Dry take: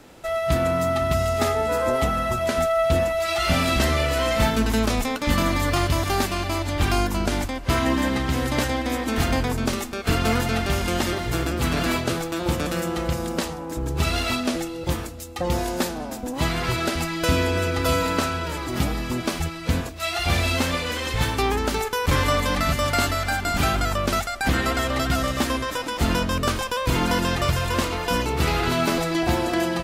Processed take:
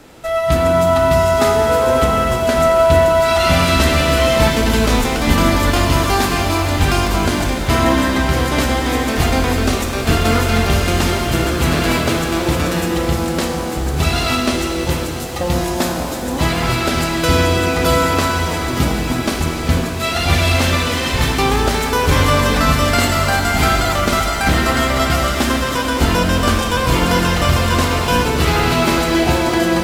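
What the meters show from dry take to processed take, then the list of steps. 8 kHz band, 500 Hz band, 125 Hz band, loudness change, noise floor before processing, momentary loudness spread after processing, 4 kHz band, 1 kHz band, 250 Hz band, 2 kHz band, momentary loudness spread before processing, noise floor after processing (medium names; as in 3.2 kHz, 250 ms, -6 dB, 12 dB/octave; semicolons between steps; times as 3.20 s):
+7.5 dB, +8.0 dB, +8.0 dB, +7.5 dB, -33 dBFS, 5 LU, +7.5 dB, +8.0 dB, +7.5 dB, +7.5 dB, 5 LU, -21 dBFS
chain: pitch-shifted reverb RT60 3.9 s, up +7 st, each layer -8 dB, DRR 2 dB; trim +5 dB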